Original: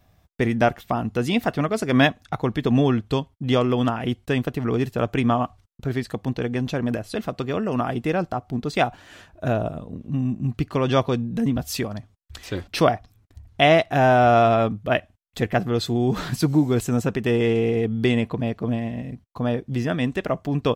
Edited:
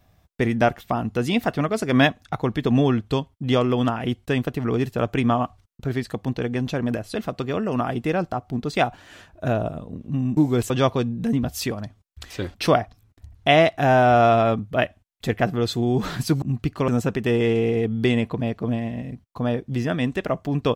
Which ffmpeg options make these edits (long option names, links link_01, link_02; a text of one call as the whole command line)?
ffmpeg -i in.wav -filter_complex "[0:a]asplit=5[link_01][link_02][link_03][link_04][link_05];[link_01]atrim=end=10.372[link_06];[link_02]atrim=start=16.548:end=16.882[link_07];[link_03]atrim=start=10.828:end=16.552[link_08];[link_04]atrim=start=10.368:end=10.832[link_09];[link_05]atrim=start=16.878[link_10];[link_06][link_07]acrossfade=duration=0.004:curve1=hsin:curve2=hsin[link_11];[link_11][link_08]acrossfade=duration=0.004:curve1=hsin:curve2=hsin[link_12];[link_12][link_09]acrossfade=duration=0.004:curve1=hsin:curve2=hsin[link_13];[link_13][link_10]acrossfade=duration=0.004:curve1=hsin:curve2=hsin" out.wav